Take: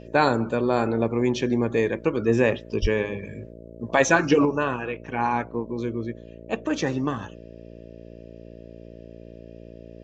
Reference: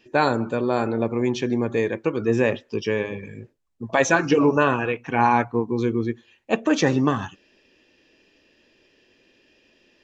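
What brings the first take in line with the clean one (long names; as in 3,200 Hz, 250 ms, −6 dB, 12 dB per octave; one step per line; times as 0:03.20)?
hum removal 57.4 Hz, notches 11
high-pass at the plosives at 0:02.81
level 0 dB, from 0:04.45 +6 dB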